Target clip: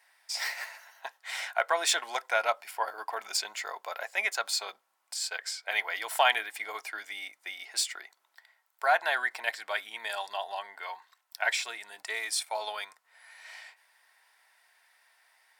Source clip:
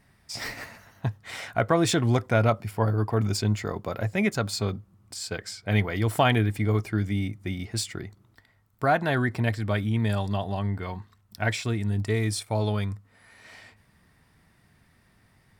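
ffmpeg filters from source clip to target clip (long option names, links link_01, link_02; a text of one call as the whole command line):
ffmpeg -i in.wav -af "highpass=frequency=760:width=0.5412,highpass=frequency=760:width=1.3066,bandreject=frequency=1200:width=6,volume=2dB" out.wav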